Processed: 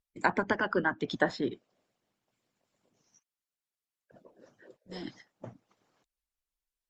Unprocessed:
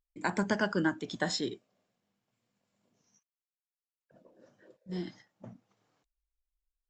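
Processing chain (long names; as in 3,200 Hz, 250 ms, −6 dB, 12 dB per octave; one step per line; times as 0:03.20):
harmonic and percussive parts rebalanced harmonic −16 dB
treble cut that deepens with the level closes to 2,100 Hz, closed at −32 dBFS
level +6.5 dB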